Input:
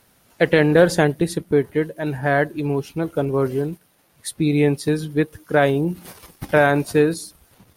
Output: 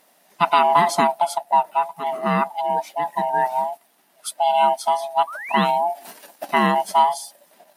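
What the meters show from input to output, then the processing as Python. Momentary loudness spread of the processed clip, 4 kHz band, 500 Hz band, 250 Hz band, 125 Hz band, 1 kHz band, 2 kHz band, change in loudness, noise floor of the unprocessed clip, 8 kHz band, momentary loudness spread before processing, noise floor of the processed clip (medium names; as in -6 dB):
12 LU, +2.5 dB, -5.5 dB, -9.0 dB, -12.5 dB, +11.0 dB, -4.5 dB, -0.5 dB, -59 dBFS, 0.0 dB, 14 LU, -59 dBFS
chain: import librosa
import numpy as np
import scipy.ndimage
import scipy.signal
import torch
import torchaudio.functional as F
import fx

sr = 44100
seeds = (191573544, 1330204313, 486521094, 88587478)

y = fx.band_swap(x, sr, width_hz=500)
y = fx.spec_paint(y, sr, seeds[0], shape='rise', start_s=5.27, length_s=0.37, low_hz=1100.0, high_hz=3900.0, level_db=-33.0)
y = fx.brickwall_highpass(y, sr, low_hz=160.0)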